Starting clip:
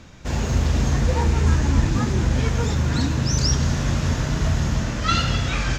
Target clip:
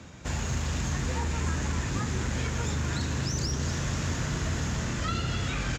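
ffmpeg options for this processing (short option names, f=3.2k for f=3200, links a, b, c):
-filter_complex "[0:a]equalizer=f=7.2k:w=3.7:g=8,asplit=2[a][b];[b]asoftclip=type=hard:threshold=-21dB,volume=-8dB[c];[a][c]amix=inputs=2:normalize=0,highpass=62,highshelf=f=4.3k:g=-5.5,acrossover=split=160|940[d][e][f];[d]acompressor=threshold=-26dB:ratio=4[g];[e]acompressor=threshold=-38dB:ratio=4[h];[f]acompressor=threshold=-31dB:ratio=4[i];[g][h][i]amix=inputs=3:normalize=0,asplit=2[j][k];[k]asplit=8[l][m][n][o][p][q][r][s];[l]adelay=240,afreqshift=100,volume=-12dB[t];[m]adelay=480,afreqshift=200,volume=-15.7dB[u];[n]adelay=720,afreqshift=300,volume=-19.5dB[v];[o]adelay=960,afreqshift=400,volume=-23.2dB[w];[p]adelay=1200,afreqshift=500,volume=-27dB[x];[q]adelay=1440,afreqshift=600,volume=-30.7dB[y];[r]adelay=1680,afreqshift=700,volume=-34.5dB[z];[s]adelay=1920,afreqshift=800,volume=-38.2dB[aa];[t][u][v][w][x][y][z][aa]amix=inputs=8:normalize=0[ab];[j][ab]amix=inputs=2:normalize=0,volume=-3.5dB"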